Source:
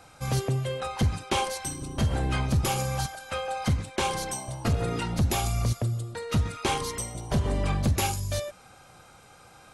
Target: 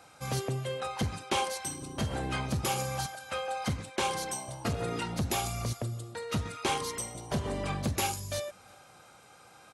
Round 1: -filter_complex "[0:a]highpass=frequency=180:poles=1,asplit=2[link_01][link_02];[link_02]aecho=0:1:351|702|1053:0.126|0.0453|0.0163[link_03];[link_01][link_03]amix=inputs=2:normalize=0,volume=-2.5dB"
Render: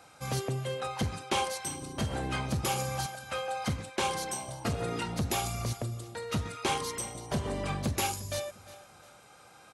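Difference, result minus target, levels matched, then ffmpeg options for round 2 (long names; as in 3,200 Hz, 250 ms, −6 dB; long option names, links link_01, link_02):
echo-to-direct +11 dB
-filter_complex "[0:a]highpass=frequency=180:poles=1,asplit=2[link_01][link_02];[link_02]aecho=0:1:351|702:0.0355|0.0128[link_03];[link_01][link_03]amix=inputs=2:normalize=0,volume=-2.5dB"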